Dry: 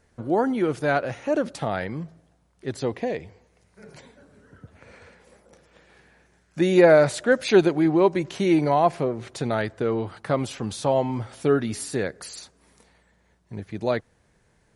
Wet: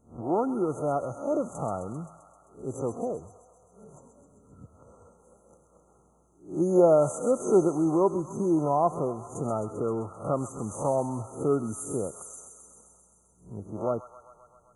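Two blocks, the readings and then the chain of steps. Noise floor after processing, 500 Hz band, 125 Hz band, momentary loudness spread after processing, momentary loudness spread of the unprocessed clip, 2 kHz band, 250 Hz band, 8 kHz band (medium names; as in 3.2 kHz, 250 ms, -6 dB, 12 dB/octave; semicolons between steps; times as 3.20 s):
-63 dBFS, -4.5 dB, -4.5 dB, 16 LU, 17 LU, under -25 dB, -4.5 dB, -1.5 dB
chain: reverse spectral sustain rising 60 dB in 0.36 s; brick-wall FIR band-stop 1.4–6 kHz; feedback echo behind a high-pass 131 ms, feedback 71%, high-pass 1.5 kHz, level -6 dB; trim -5 dB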